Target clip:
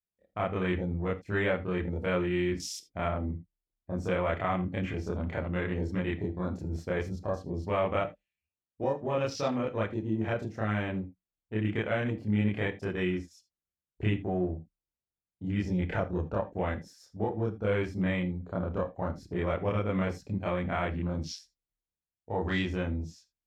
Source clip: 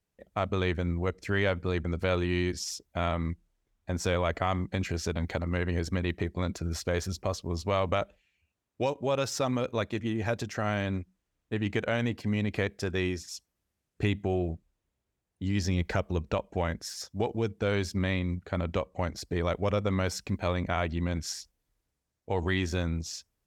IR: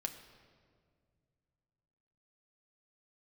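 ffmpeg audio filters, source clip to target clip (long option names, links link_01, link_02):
-filter_complex "[0:a]asettb=1/sr,asplit=3[link_01][link_02][link_03];[link_01]atrim=end=3.064[link_04];[link_02]atrim=start=3.06:end=3.91,asetpts=PTS-STARTPTS,afade=type=in:duration=0.004:curve=qsin,afade=type=out:start_time=0.846:duration=0.004:curve=qsin,lowpass=frequency=1000:poles=1[link_05];[link_03]atrim=start=3.906[link_06];[link_04][link_05]acrossfade=duration=0.004:curve1=hsin:curve2=qsin[link_07];[link_07][link_06]acrossfade=duration=0.004:curve1=qsin:curve2=hsin,afwtdn=0.0112,asplit=2[link_08][link_09];[1:a]atrim=start_sample=2205,atrim=end_sample=3969,adelay=28[link_10];[link_09][link_10]afir=irnorm=-1:irlink=0,volume=5dB[link_11];[link_08][link_11]amix=inputs=2:normalize=0,volume=-6dB"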